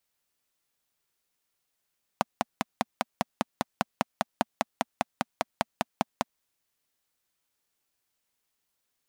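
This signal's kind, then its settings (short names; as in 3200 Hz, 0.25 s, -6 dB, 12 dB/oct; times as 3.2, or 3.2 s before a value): single-cylinder engine model, steady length 4.03 s, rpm 600, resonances 230/720 Hz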